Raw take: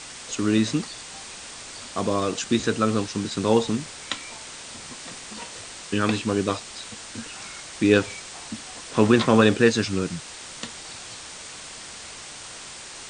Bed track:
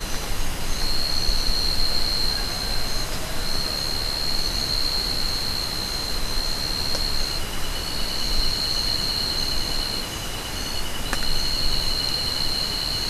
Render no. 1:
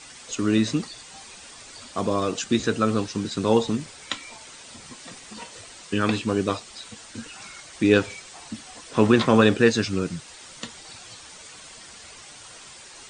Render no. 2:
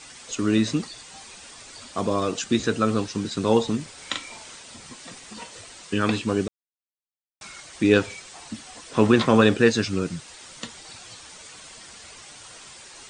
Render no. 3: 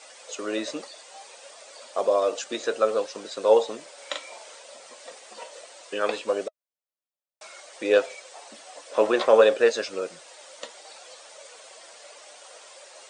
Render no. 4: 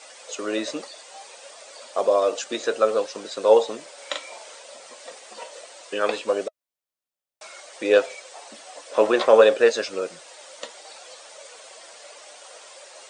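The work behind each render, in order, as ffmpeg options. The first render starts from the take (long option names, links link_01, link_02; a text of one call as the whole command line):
ffmpeg -i in.wav -af "afftdn=noise_reduction=8:noise_floor=-40" out.wav
ffmpeg -i in.wav -filter_complex "[0:a]asettb=1/sr,asplit=3[link_01][link_02][link_03];[link_01]atrim=end=3.934[link_04];[link_02]atrim=start=3.93:end=4.59,asetpts=PTS-STARTPTS,afade=type=in:duration=0.004:curve=qsin,afade=type=out:start_time=0.656:duration=0.004:curve=qsin,asplit=2[link_05][link_06];[link_06]adelay=41,volume=-4dB[link_07];[link_05][link_07]amix=inputs=2:normalize=0,atrim=end_sample=29106[link_08];[link_03]atrim=start=4.586[link_09];[link_04][link_08]acrossfade=duration=0.004:curve1=hsin:curve2=qsin[link_10];[link_10][link_09]acrossfade=duration=0.004:curve1=qsin:curve2=hsin,asplit=3[link_11][link_12][link_13];[link_11]atrim=end=6.48,asetpts=PTS-STARTPTS,afade=type=out:start_time=6.476:duration=0.004:curve=hsin[link_14];[link_12]atrim=start=6.48:end=7.41,asetpts=PTS-STARTPTS,volume=0[link_15];[link_13]atrim=start=7.41,asetpts=PTS-STARTPTS,afade=type=in:duration=0.004:curve=hsin[link_16];[link_14][link_15][link_16]concat=n=3:v=0:a=1" out.wav
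ffmpeg -i in.wav -af "highpass=frequency=560:width_type=q:width=4.9,flanger=delay=1.4:depth=2.2:regen=81:speed=0.62:shape=triangular" out.wav
ffmpeg -i in.wav -af "volume=2.5dB" out.wav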